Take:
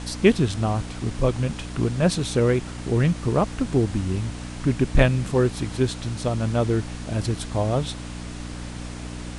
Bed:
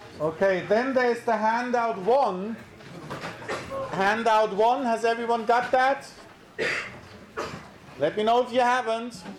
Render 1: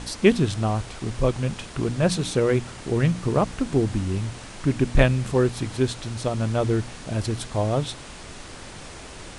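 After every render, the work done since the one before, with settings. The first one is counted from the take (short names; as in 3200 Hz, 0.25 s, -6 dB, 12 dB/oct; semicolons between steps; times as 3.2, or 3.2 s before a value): de-hum 60 Hz, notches 5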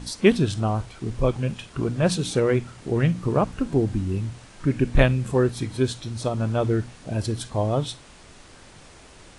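noise print and reduce 8 dB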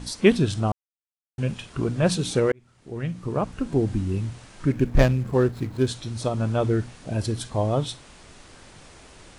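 0.72–1.38 mute; 2.52–3.92 fade in; 4.72–5.87 median filter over 15 samples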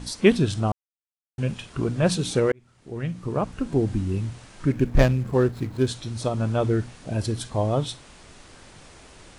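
nothing audible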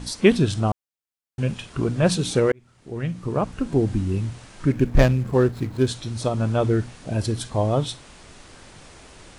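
gain +2 dB; limiter -3 dBFS, peak gain reduction 1.5 dB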